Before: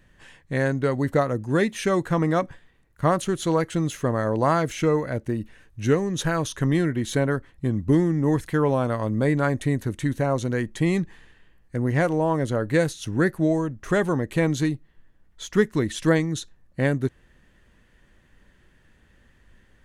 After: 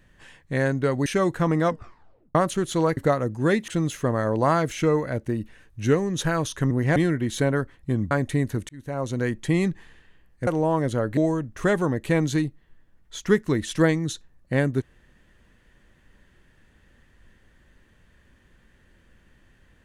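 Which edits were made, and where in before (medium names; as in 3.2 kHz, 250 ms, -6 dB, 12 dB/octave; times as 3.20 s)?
1.06–1.77 s: move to 3.68 s
2.36 s: tape stop 0.70 s
7.86–9.43 s: delete
10.01–10.55 s: fade in
11.79–12.04 s: move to 6.71 s
12.74–13.44 s: delete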